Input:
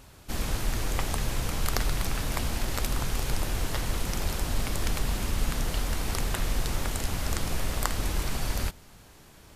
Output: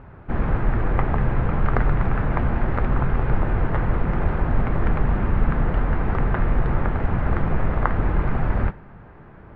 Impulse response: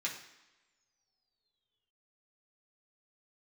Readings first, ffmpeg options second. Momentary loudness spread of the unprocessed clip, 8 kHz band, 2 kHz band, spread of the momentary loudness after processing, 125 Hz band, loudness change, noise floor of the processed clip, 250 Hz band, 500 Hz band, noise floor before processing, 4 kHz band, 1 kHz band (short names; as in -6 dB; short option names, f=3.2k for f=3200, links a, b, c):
2 LU, under -40 dB, +5.0 dB, 2 LU, +10.0 dB, +7.5 dB, -44 dBFS, +10.0 dB, +9.0 dB, -52 dBFS, under -15 dB, +8.5 dB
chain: -filter_complex "[0:a]lowpass=f=1.7k:w=0.5412,lowpass=f=1.7k:w=1.3066,equalizer=f=130:t=o:w=1.2:g=4,asplit=2[a][b];[1:a]atrim=start_sample=2205[c];[b][c]afir=irnorm=-1:irlink=0,volume=-13dB[d];[a][d]amix=inputs=2:normalize=0,volume=8dB"